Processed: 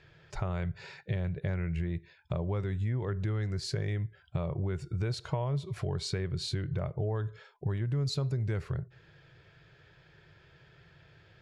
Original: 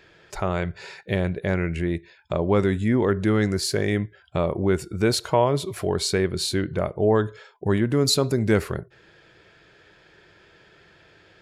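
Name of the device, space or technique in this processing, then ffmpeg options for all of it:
jukebox: -af "lowpass=6100,lowshelf=f=180:t=q:w=3:g=7,acompressor=threshold=0.0794:ratio=5,volume=0.447"

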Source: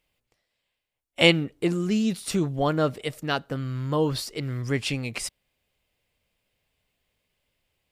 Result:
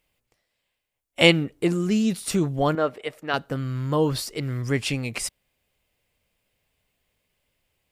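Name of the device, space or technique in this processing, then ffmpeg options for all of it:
exciter from parts: -filter_complex "[0:a]asettb=1/sr,asplit=3[s0][s1][s2];[s0]atrim=end=2.754[s3];[s1]atrim=start=2.75:end=3.34,asetpts=PTS-STARTPTS,afade=t=in:d=0.004:c=qsin,afade=t=out:st=0.586:d=0.004:c=qsin,bass=f=250:g=-15,treble=f=4000:g=-13[s4];[s2]atrim=start=3.336[s5];[s3][s4]acrossfade=d=0.004:c1=hsin:c2=qsin[s6];[s6][s5]acrossfade=d=0.004:c1=qsin:c2=hsin,asplit=2[s7][s8];[s8]highpass=2800,asoftclip=type=tanh:threshold=0.224,highpass=3700,volume=0.316[s9];[s7][s9]amix=inputs=2:normalize=0,volume=1.26"

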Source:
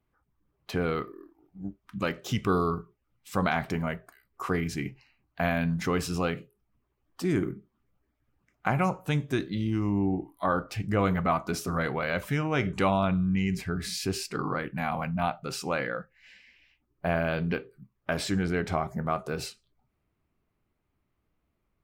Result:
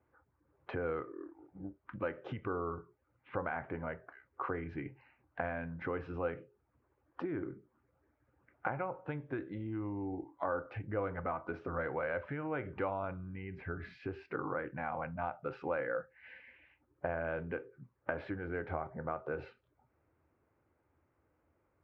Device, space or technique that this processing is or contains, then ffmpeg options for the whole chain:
bass amplifier: -filter_complex "[0:a]acompressor=threshold=0.00891:ratio=4,highpass=77,equalizer=f=83:t=q:w=4:g=7,equalizer=f=190:t=q:w=4:g=-9,equalizer=f=320:t=q:w=4:g=5,equalizer=f=520:t=q:w=4:g=10,equalizer=f=870:t=q:w=4:g=6,equalizer=f=1500:t=q:w=4:g=6,lowpass=f=2300:w=0.5412,lowpass=f=2300:w=1.3066,asettb=1/sr,asplit=3[s0][s1][s2];[s0]atrim=end=2.494[s3];[s1]atrim=start=2.49:end=3.79,asetpts=PTS-STARTPTS,afade=t=in:d=0.004:c=qsin,afade=t=out:st=1.296:d=0.004:c=qsin,lowpass=f=3100:w=0.5412,lowpass=f=3100:w=1.3066[s4];[s2]atrim=start=3.786[s5];[s3][s4]acrossfade=d=0.004:c1=hsin:c2=qsin[s6];[s6][s5]acrossfade=d=0.004:c1=qsin:c2=hsin,volume=1.12"

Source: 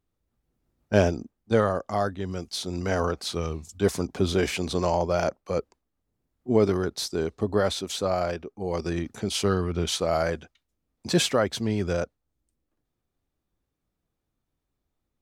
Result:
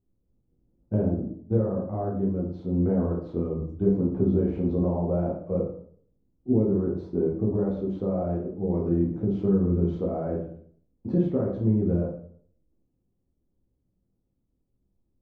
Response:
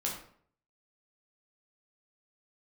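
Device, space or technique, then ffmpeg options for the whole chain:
television next door: -filter_complex "[0:a]acompressor=threshold=0.0631:ratio=5,lowpass=410[s0];[1:a]atrim=start_sample=2205[s1];[s0][s1]afir=irnorm=-1:irlink=0,volume=1.41"

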